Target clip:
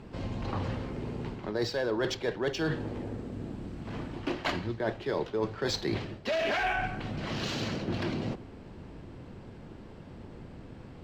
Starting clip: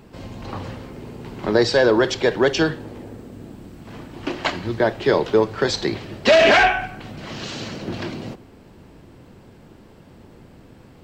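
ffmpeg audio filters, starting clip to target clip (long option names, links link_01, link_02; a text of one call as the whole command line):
ffmpeg -i in.wav -af "adynamicsmooth=sensitivity=5:basefreq=6700,lowshelf=frequency=130:gain=4,areverse,acompressor=threshold=-26dB:ratio=8,areverse,volume=-1.5dB" out.wav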